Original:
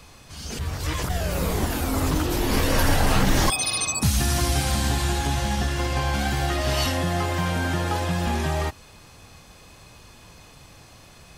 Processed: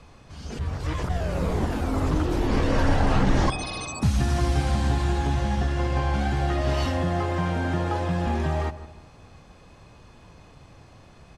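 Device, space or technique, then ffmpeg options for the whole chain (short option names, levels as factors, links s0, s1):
through cloth: -filter_complex "[0:a]lowpass=8500,highshelf=f=2200:g=-11.5,asettb=1/sr,asplit=3[s0][s1][s2];[s0]atrim=end=2.474[s3];[s1]atrim=start=2.47:end=3.84,asetpts=PTS-STARTPTS,afade=t=in:d=0.004:c=qsin,afade=t=out:st=1.366:d=0.004:c=qsin,lowpass=8900[s4];[s2]atrim=start=3.836[s5];[s3][s4]acrossfade=d=0.004:c1=hsin:c2=qsin[s6];[s6][s5]acrossfade=d=0.004:c1=qsin:c2=hsin,asplit=2[s7][s8];[s8]adelay=157,lowpass=f=1400:p=1,volume=0.224,asplit=2[s9][s10];[s10]adelay=157,lowpass=f=1400:p=1,volume=0.41,asplit=2[s11][s12];[s12]adelay=157,lowpass=f=1400:p=1,volume=0.41,asplit=2[s13][s14];[s14]adelay=157,lowpass=f=1400:p=1,volume=0.41[s15];[s7][s9][s11][s13][s15]amix=inputs=5:normalize=0"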